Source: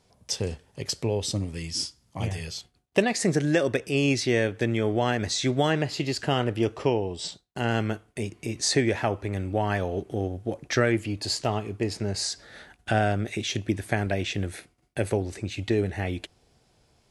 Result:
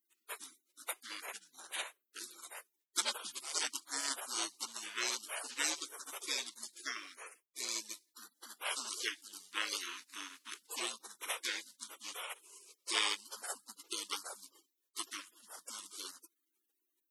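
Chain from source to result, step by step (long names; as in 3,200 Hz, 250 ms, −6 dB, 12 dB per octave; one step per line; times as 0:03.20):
Butterworth high-pass 610 Hz 36 dB per octave
gate on every frequency bin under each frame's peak −30 dB weak
high-shelf EQ 7,700 Hz −4.5 dB
level +16 dB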